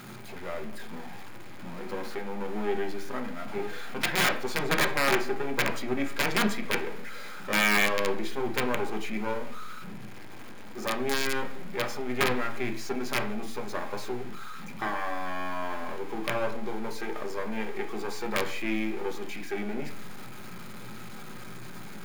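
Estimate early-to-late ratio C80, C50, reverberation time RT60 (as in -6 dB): 15.0 dB, 11.5 dB, 0.50 s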